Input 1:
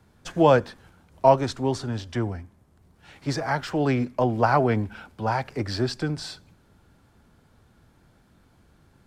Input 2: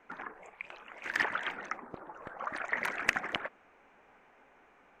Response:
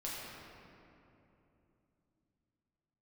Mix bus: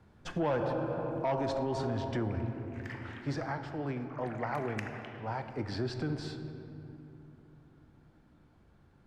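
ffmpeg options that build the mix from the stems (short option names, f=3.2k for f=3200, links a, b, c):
-filter_complex "[0:a]lowpass=f=2.4k:p=1,volume=5dB,afade=t=out:st=2.9:d=0.72:silence=0.251189,afade=t=in:st=5.24:d=0.54:silence=0.375837,asplit=3[a][b][c];[b]volume=-7dB[d];[1:a]adelay=1700,volume=-14.5dB,asplit=2[e][f];[f]volume=-4.5dB[g];[c]apad=whole_len=295474[h];[e][h]sidechaingate=range=-7dB:threshold=-55dB:ratio=16:detection=peak[i];[2:a]atrim=start_sample=2205[j];[d][g]amix=inputs=2:normalize=0[k];[k][j]afir=irnorm=-1:irlink=0[l];[a][i][l]amix=inputs=3:normalize=0,asoftclip=type=tanh:threshold=-14.5dB,alimiter=level_in=0.5dB:limit=-24dB:level=0:latency=1:release=85,volume=-0.5dB"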